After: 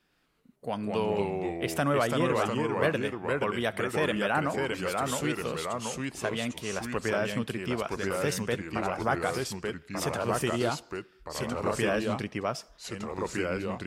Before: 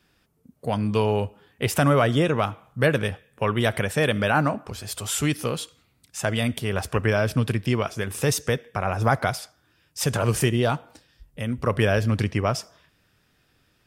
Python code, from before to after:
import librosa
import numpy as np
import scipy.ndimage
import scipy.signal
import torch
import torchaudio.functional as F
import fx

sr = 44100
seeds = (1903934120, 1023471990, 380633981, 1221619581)

y = fx.high_shelf(x, sr, hz=5400.0, db=-4.5)
y = fx.echo_pitch(y, sr, ms=117, semitones=-2, count=2, db_per_echo=-3.0)
y = fx.peak_eq(y, sr, hz=92.0, db=-13.5, octaves=1.0)
y = y * librosa.db_to_amplitude(-6.0)